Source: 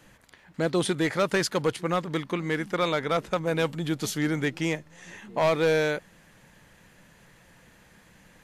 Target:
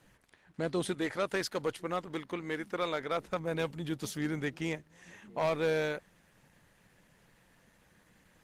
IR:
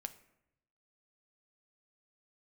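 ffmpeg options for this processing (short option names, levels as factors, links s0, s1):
-filter_complex "[0:a]asettb=1/sr,asplit=3[s0][s1][s2];[s0]atrim=end=0.944[s3];[s1]atrim=start=0.94:end=3.2,asetpts=PTS-STARTPTS,afade=t=in:d=0.004:c=qsin,afade=t=out:st=2.256:d=0.004:c=qsin,adynamicequalizer=threshold=0.00562:dfrequency=160:dqfactor=2.4:tfrequency=160:tqfactor=2.4:attack=5:release=100:ratio=0.375:range=3.5:mode=cutabove:tftype=bell[s4];[s2]atrim=start=3.196[s5];[s3][s4]acrossfade=d=0.004:c1=hsin:c2=qsin[s6];[s6][s5]acrossfade=d=0.004:c1=qsin:c2=hsin,tremolo=f=91:d=0.261,volume=0.501" -ar 48000 -c:a libopus -b:a 20k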